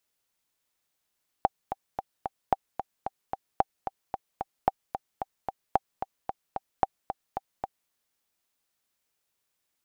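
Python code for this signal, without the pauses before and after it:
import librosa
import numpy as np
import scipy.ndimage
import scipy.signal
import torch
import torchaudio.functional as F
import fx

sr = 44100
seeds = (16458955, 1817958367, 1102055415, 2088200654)

y = fx.click_track(sr, bpm=223, beats=4, bars=6, hz=779.0, accent_db=9.5, level_db=-7.5)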